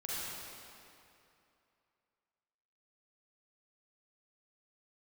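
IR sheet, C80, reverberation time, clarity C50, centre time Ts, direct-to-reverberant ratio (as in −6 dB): −3.5 dB, 2.7 s, −6.0 dB, 200 ms, −8.0 dB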